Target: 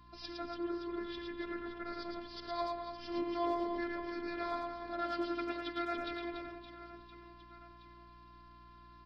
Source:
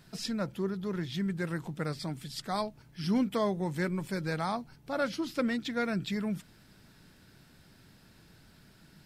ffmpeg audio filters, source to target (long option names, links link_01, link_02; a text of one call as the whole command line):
ffmpeg -i in.wav -filter_complex "[0:a]asplit=2[link_01][link_02];[link_02]aecho=0:1:110|286|567.6|1018|1739:0.631|0.398|0.251|0.158|0.1[link_03];[link_01][link_03]amix=inputs=2:normalize=0,aeval=exprs='val(0)+0.00224*sin(2*PI*1100*n/s)':channel_layout=same,afftfilt=real='hypot(re,im)*cos(PI*b)':imag='0':win_size=512:overlap=0.75,aeval=exprs='val(0)+0.00158*(sin(2*PI*60*n/s)+sin(2*PI*2*60*n/s)/2+sin(2*PI*3*60*n/s)/3+sin(2*PI*4*60*n/s)/4+sin(2*PI*5*60*n/s)/5)':channel_layout=same,aresample=11025,aresample=44100,asplit=2[link_04][link_05];[link_05]adelay=90,highpass=300,lowpass=3400,asoftclip=type=hard:threshold=-27.5dB,volume=-8dB[link_06];[link_04][link_06]amix=inputs=2:normalize=0,volume=-4dB" out.wav